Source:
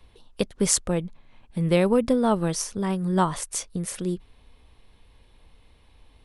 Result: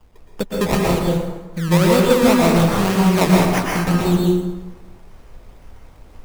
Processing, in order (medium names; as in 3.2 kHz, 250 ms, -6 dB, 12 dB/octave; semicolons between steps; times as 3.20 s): gain riding within 3 dB 0.5 s; decimation with a swept rate 21×, swing 100% 1.9 Hz; plate-style reverb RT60 1.2 s, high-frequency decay 0.6×, pre-delay 105 ms, DRR -3 dB; trim +4.5 dB